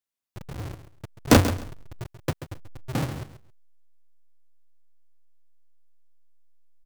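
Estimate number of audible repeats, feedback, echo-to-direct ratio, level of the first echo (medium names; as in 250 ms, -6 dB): 2, 19%, -12.0 dB, -12.0 dB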